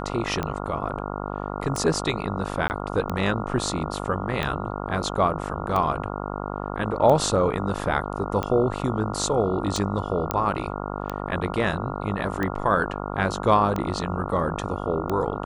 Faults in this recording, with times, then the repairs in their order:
buzz 50 Hz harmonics 28 -31 dBFS
tick 45 rpm -14 dBFS
2.68–2.7 gap 19 ms
10.31 pop -7 dBFS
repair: de-click; de-hum 50 Hz, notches 28; interpolate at 2.68, 19 ms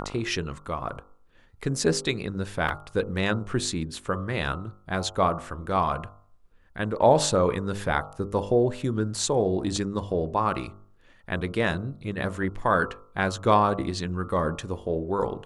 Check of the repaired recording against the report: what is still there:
none

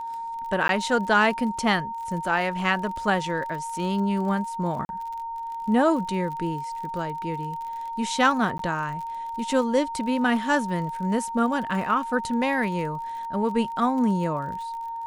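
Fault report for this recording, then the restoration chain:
crackle 40/s -34 dBFS
tone 920 Hz -30 dBFS
0.68–0.69 gap 12 ms
4.85–4.89 gap 41 ms
8.58–8.59 gap 13 ms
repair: de-click; notch 920 Hz, Q 30; interpolate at 0.68, 12 ms; interpolate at 4.85, 41 ms; interpolate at 8.58, 13 ms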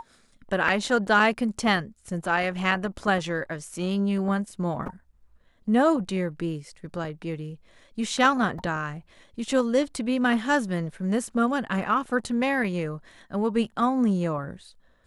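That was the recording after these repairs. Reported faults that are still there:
none

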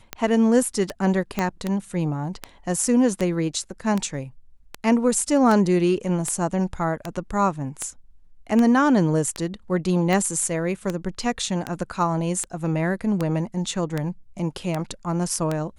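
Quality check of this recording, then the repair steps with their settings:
tick 78 rpm -11 dBFS
1.39 pop -9 dBFS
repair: de-click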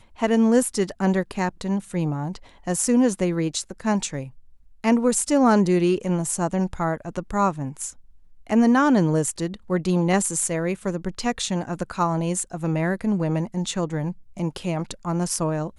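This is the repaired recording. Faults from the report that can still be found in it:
1.39 pop

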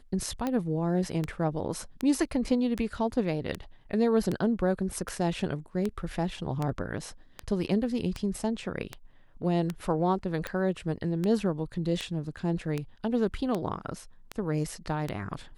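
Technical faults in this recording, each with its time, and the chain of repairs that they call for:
tick 78 rpm -17 dBFS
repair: de-click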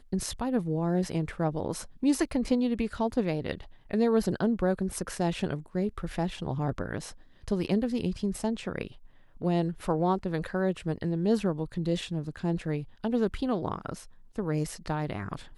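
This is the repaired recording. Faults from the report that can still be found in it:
none

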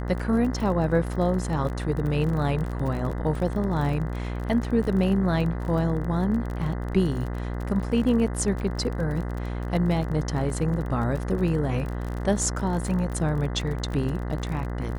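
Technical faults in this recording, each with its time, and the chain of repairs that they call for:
buzz 60 Hz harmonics 34 -30 dBFS
crackle 33/s -31 dBFS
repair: de-click; de-hum 60 Hz, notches 34

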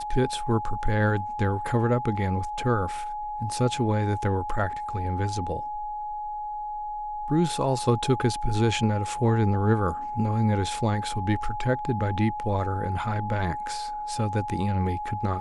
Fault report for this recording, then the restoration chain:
tone 840 Hz -30 dBFS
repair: notch 840 Hz, Q 30

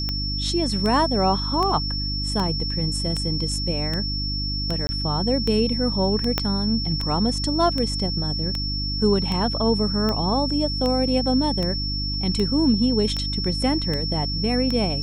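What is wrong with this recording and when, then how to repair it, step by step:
hum 50 Hz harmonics 6 -28 dBFS
tick 78 rpm -13 dBFS
tone 5400 Hz -27 dBFS
4.87–4.89 gap 20 ms
6.38 pop -6 dBFS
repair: de-click; de-hum 50 Hz, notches 6; notch 5400 Hz, Q 30; interpolate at 4.87, 20 ms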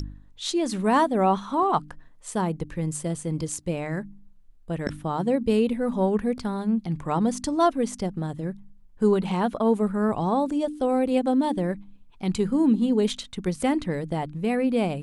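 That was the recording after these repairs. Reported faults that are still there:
6.38 pop

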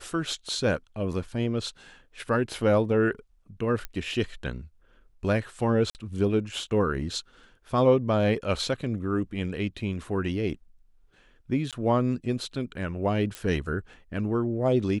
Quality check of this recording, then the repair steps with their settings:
3.85 pop -19 dBFS
5.9–5.95 gap 49 ms
11.71–11.73 gap 17 ms
13.35 pop -18 dBFS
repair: de-click; interpolate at 5.9, 49 ms; interpolate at 11.71, 17 ms

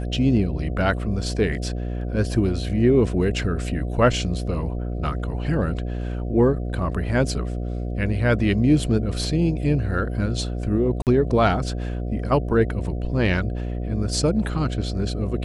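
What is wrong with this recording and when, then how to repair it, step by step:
buzz 60 Hz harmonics 12 -27 dBFS
11.02–11.07 gap 48 ms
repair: de-hum 60 Hz, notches 12; interpolate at 11.02, 48 ms

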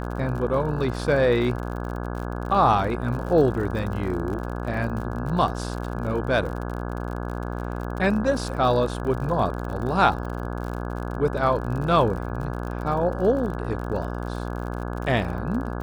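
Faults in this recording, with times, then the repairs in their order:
buzz 60 Hz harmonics 28 -30 dBFS
crackle 53/s -32 dBFS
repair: de-click; de-hum 60 Hz, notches 28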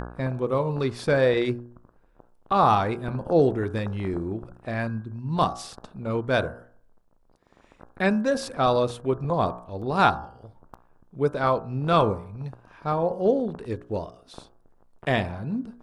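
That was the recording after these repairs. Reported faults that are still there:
none

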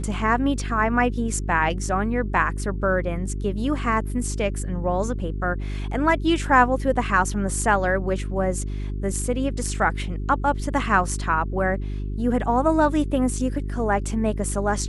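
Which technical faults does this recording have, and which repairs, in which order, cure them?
hum 50 Hz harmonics 8 -28 dBFS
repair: de-hum 50 Hz, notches 8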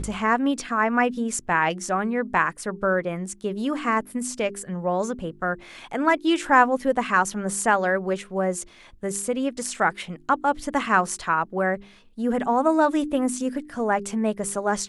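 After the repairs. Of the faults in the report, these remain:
none

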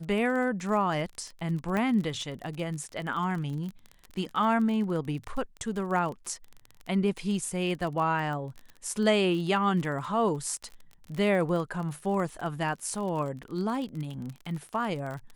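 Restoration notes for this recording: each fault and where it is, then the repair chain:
crackle 31/s -34 dBFS
1.77 pop -18 dBFS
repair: de-click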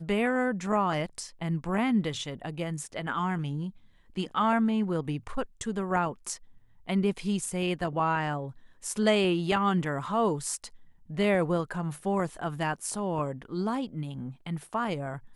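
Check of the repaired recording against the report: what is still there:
none

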